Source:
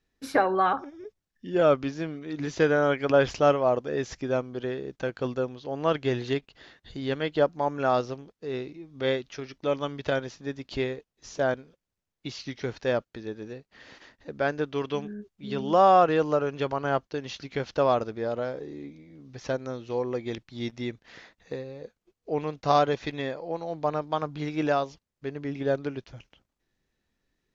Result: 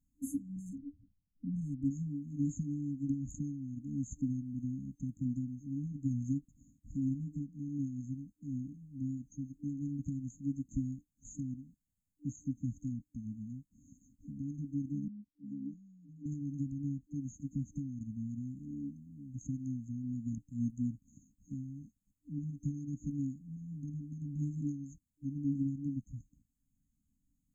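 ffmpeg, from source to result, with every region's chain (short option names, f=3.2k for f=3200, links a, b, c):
-filter_complex "[0:a]asettb=1/sr,asplit=3[a][b][c];[a]atrim=end=0.564[d];[b]atrim=start=0.56:end=1.91,asetpts=PTS-STARTPTS,afade=t=in:d=0.004:c=qsin,afade=t=out:st=1.346:d=0.004:c=qsin,adynamicsmooth=sensitivity=2:basefreq=870,aecho=1:1:1.1:0.38,atrim=end_sample=59535[e];[c]atrim=start=1.906[f];[d][e]acrossfade=d=0.004:c1=hsin:c2=qsin[g];[g][f]acrossfade=d=0.004:c1=qsin:c2=hsin,asettb=1/sr,asplit=3[h][i][j];[h]atrim=end=15.084[k];[i]atrim=start=15.08:end=16.26,asetpts=PTS-STARTPTS,afade=t=in:d=0.004:c=qsin,afade=t=out:st=1.176:d=0.004:c=qsin,acrossover=split=280 3100:gain=0.126 1 0.112[l][m][n];[l][m][n]amix=inputs=3:normalize=0,acompressor=threshold=-34dB:ratio=1.5:attack=3.2:release=140:knee=1:detection=peak[o];[j]atrim=start=16.256[p];[k][o]acrossfade=d=0.004:c1=hsin:c2=qsin[q];[q][p]acrossfade=d=0.004:c1=qsin:c2=hsin,acompressor=threshold=-25dB:ratio=10,afftfilt=real='re*(1-between(b*sr/4096,300,6300))':imag='im*(1-between(b*sr/4096,300,6300))':win_size=4096:overlap=0.75,volume=1dB"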